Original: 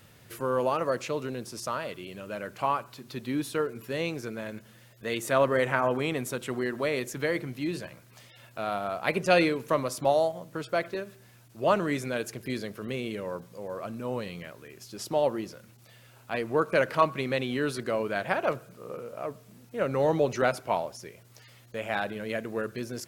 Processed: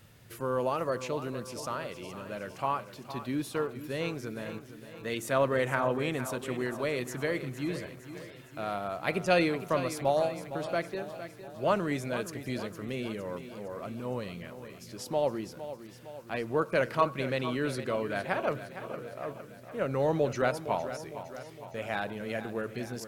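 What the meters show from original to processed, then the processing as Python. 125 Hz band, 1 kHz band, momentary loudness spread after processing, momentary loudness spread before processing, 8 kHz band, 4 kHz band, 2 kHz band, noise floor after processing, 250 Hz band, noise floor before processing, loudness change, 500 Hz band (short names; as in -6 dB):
-0.5 dB, -3.0 dB, 14 LU, 15 LU, -3.0 dB, -3.0 dB, -3.0 dB, -49 dBFS, -2.0 dB, -56 dBFS, -3.0 dB, -3.0 dB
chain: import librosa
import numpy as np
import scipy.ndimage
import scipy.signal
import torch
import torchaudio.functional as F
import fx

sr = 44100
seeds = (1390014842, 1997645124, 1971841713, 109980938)

p1 = fx.low_shelf(x, sr, hz=130.0, db=6.0)
p2 = p1 + fx.echo_feedback(p1, sr, ms=460, feedback_pct=57, wet_db=-12, dry=0)
y = p2 * librosa.db_to_amplitude(-3.5)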